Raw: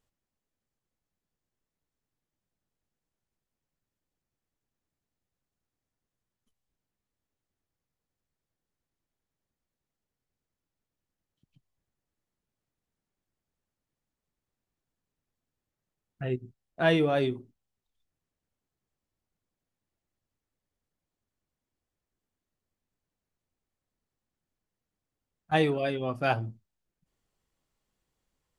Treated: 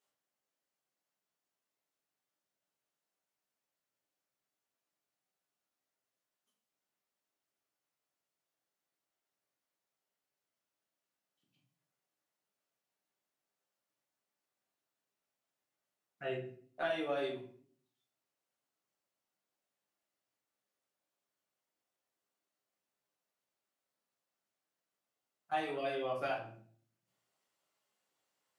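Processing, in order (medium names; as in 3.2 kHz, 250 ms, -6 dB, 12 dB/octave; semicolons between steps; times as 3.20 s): Bessel high-pass 520 Hz, order 2; compression 12:1, threshold -34 dBFS, peak gain reduction 14.5 dB; reverberation RT60 0.50 s, pre-delay 5 ms, DRR -4.5 dB; trim -4.5 dB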